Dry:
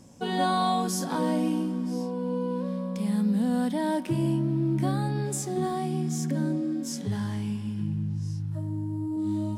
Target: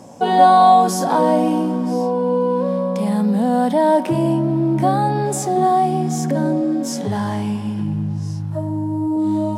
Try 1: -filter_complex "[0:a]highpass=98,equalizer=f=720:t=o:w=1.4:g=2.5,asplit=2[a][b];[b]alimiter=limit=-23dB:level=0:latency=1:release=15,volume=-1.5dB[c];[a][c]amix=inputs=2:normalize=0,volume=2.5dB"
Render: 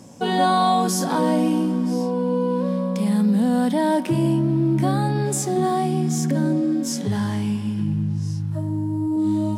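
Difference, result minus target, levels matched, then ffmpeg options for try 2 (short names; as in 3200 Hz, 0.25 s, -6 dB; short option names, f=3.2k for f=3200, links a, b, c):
1000 Hz band -5.0 dB
-filter_complex "[0:a]highpass=98,equalizer=f=720:t=o:w=1.4:g=13.5,asplit=2[a][b];[b]alimiter=limit=-23dB:level=0:latency=1:release=15,volume=-1.5dB[c];[a][c]amix=inputs=2:normalize=0,volume=2.5dB"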